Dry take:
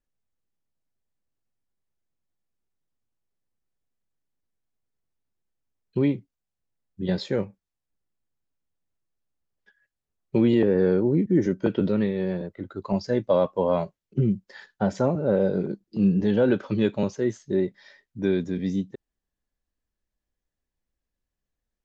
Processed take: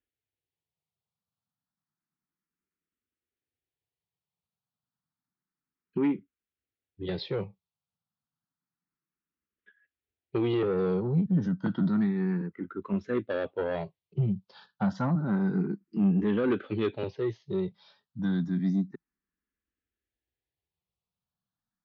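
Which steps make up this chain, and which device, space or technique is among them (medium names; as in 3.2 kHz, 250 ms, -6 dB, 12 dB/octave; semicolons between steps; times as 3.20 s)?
barber-pole phaser into a guitar amplifier (barber-pole phaser +0.3 Hz; saturation -19.5 dBFS, distortion -16 dB; cabinet simulation 79–4500 Hz, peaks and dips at 170 Hz +4 dB, 580 Hz -9 dB, 1.3 kHz +4 dB)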